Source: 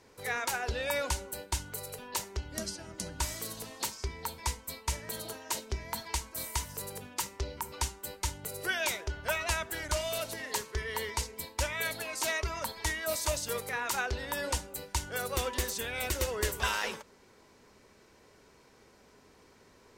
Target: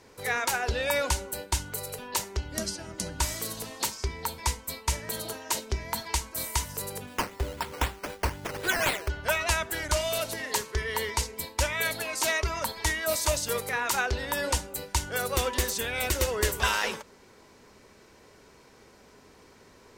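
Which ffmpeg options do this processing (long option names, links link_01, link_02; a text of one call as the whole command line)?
ffmpeg -i in.wav -filter_complex "[0:a]asplit=3[link_01][link_02][link_03];[link_01]afade=type=out:start_time=7.06:duration=0.02[link_04];[link_02]acrusher=samples=10:mix=1:aa=0.000001:lfo=1:lforange=6:lforate=3.9,afade=type=in:start_time=7.06:duration=0.02,afade=type=out:start_time=9.08:duration=0.02[link_05];[link_03]afade=type=in:start_time=9.08:duration=0.02[link_06];[link_04][link_05][link_06]amix=inputs=3:normalize=0,volume=5dB" out.wav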